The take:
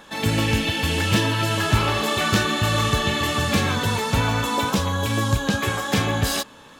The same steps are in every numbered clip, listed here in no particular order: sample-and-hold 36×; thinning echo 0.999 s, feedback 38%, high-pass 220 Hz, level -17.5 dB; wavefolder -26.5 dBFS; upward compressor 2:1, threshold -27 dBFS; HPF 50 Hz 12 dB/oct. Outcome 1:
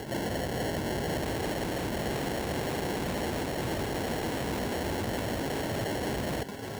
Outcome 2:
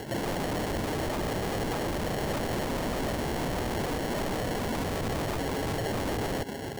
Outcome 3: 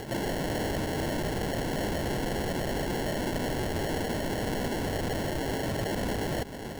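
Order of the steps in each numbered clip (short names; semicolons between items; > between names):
sample-and-hold > thinning echo > upward compressor > wavefolder > HPF; thinning echo > sample-and-hold > HPF > wavefolder > upward compressor; HPF > wavefolder > thinning echo > sample-and-hold > upward compressor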